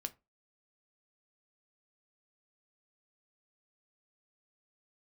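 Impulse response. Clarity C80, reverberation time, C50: 29.0 dB, 0.25 s, 21.5 dB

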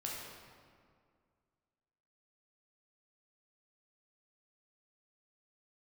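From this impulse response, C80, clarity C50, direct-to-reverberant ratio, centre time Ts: 1.5 dB, -0.5 dB, -4.0 dB, 103 ms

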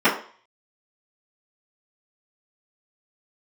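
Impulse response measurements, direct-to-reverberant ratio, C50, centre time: -15.0 dB, 8.0 dB, 26 ms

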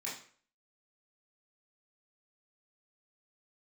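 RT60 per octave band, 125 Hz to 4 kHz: 0.45 s, 0.45 s, 0.50 s, 0.45 s, 0.45 s, 0.40 s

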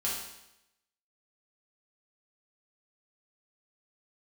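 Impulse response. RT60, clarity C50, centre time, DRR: 0.85 s, 1.5 dB, 55 ms, -6.5 dB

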